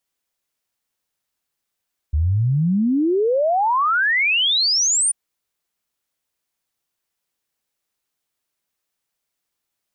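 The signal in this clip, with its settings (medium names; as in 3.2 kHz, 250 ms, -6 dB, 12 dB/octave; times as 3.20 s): log sweep 71 Hz -> 9.6 kHz 2.99 s -15 dBFS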